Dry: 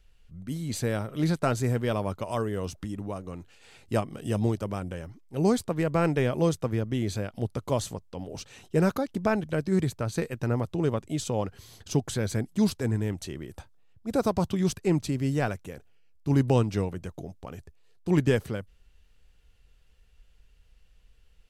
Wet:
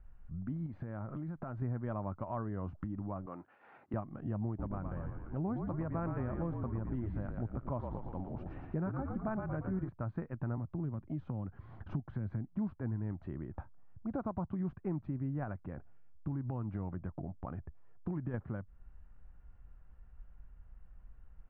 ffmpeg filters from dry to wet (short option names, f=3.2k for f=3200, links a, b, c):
-filter_complex "[0:a]asettb=1/sr,asplit=3[a][b][c];[a]atrim=end=0.664[d];[b]atrim=start=0.66:end=1.62,asetpts=PTS-STARTPTS,afade=t=in:d=0.004:c=qsin,afade=t=out:st=0.956:d=0.004:c=qsin,acompressor=threshold=-36dB:ratio=10:attack=3.2:release=140:knee=1:detection=peak[e];[c]atrim=start=1.616[f];[d][e]acrossfade=d=0.004:c1=hsin:c2=qsin[g];[g][f]acrossfade=d=0.004:c1=qsin:c2=hsin,asettb=1/sr,asplit=3[h][i][j];[h]atrim=end=3.264[k];[i]atrim=start=3.26:end=3.94,asetpts=PTS-STARTPTS,afade=t=in:d=0.004:c=qsin,afade=t=out:st=0.676:d=0.004:c=qsin,highpass=340[l];[j]atrim=start=3.936[m];[k][l]acrossfade=d=0.004:c1=hsin:c2=qsin[n];[n][m]acrossfade=d=0.004:c1=qsin:c2=hsin,asettb=1/sr,asplit=3[o][p][q];[o]atrim=end=4.474[r];[p]atrim=start=4.47:end=9.89,asetpts=PTS-STARTPTS,afade=t=in:d=0.004:c=qsin,afade=t=out:st=5.416:d=0.004:c=qsin,asplit=8[s][t][u][v][w][x][y][z];[t]adelay=115,afreqshift=-50,volume=-6dB[aa];[u]adelay=230,afreqshift=-100,volume=-11.2dB[ab];[v]adelay=345,afreqshift=-150,volume=-16.4dB[ac];[w]adelay=460,afreqshift=-200,volume=-21.6dB[ad];[x]adelay=575,afreqshift=-250,volume=-26.8dB[ae];[y]adelay=690,afreqshift=-300,volume=-32dB[af];[z]adelay=805,afreqshift=-350,volume=-37.2dB[ag];[s][aa][ab][ac][ad][ae][af][ag]amix=inputs=8:normalize=0,atrim=end_sample=239022[ah];[q]atrim=start=9.886[ai];[r][ah]acrossfade=d=0.004:c1=hsin:c2=qsin[aj];[aj][ai]acrossfade=d=0.004:c1=qsin:c2=hsin,asettb=1/sr,asplit=3[ak][al][am];[ak]atrim=end=10.574[an];[al]atrim=start=10.57:end=12.56,asetpts=PTS-STARTPTS,afade=t=in:d=0.004:c=qsin,afade=t=out:st=1.986:d=0.004:c=qsin,acrossover=split=320|3000[ao][ap][aq];[ap]acompressor=threshold=-39dB:ratio=6:attack=3.2:release=140:knee=2.83:detection=peak[ar];[ao][ar][aq]amix=inputs=3:normalize=0[as];[am]atrim=start=12.556[at];[an][as]acrossfade=d=0.004:c1=hsin:c2=qsin[au];[au][at]acrossfade=d=0.004:c1=qsin:c2=hsin,asettb=1/sr,asplit=3[av][aw][ax];[av]atrim=end=15.434[ay];[aw]atrim=start=15.43:end=18.34,asetpts=PTS-STARTPTS,afade=t=in:d=0.004:c=qsin,afade=t=out:st=2.906:d=0.004:c=qsin,acompressor=threshold=-25dB:ratio=6:attack=3.2:release=140:knee=1:detection=peak[az];[ax]atrim=start=18.336[ba];[ay][az]acrossfade=d=0.004:c1=hsin:c2=qsin[bb];[bb][ba]acrossfade=d=0.004:c1=qsin:c2=hsin,lowpass=f=1.4k:w=0.5412,lowpass=f=1.4k:w=1.3066,equalizer=f=450:w=2.7:g=-11.5,acompressor=threshold=-44dB:ratio=3,volume=5dB"